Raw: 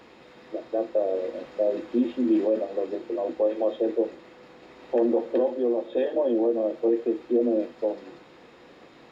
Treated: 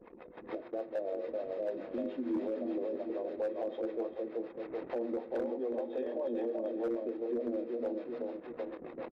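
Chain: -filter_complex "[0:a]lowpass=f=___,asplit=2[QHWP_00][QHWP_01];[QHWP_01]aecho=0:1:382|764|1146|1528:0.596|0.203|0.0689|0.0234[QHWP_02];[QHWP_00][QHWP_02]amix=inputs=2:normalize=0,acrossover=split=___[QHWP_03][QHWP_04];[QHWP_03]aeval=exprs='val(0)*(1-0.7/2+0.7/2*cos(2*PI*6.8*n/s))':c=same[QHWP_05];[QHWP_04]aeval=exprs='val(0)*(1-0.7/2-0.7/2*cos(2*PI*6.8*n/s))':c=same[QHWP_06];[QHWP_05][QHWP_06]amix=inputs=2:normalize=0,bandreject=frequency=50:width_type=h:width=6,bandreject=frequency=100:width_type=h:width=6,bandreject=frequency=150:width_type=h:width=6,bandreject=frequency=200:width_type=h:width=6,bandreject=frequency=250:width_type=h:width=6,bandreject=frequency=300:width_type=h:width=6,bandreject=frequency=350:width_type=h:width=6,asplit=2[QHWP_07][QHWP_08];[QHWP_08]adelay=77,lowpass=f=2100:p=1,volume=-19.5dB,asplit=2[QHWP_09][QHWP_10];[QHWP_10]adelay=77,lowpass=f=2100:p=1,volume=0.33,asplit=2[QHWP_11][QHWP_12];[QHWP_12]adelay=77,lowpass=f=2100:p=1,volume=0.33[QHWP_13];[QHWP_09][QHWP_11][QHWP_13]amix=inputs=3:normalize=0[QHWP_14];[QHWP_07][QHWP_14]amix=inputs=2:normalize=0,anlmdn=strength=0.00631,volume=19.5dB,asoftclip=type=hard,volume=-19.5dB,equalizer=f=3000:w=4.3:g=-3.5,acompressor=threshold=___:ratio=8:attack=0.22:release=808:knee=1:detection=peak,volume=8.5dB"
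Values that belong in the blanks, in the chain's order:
3900, 420, -39dB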